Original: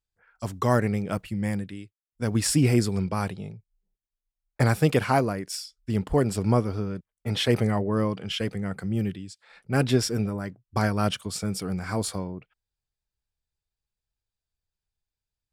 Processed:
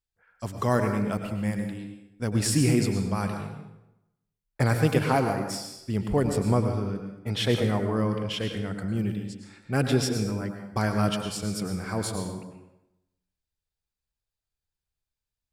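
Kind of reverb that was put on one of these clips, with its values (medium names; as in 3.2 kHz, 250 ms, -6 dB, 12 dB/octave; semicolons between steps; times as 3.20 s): plate-style reverb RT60 0.89 s, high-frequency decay 0.75×, pre-delay 90 ms, DRR 5 dB; trim -2 dB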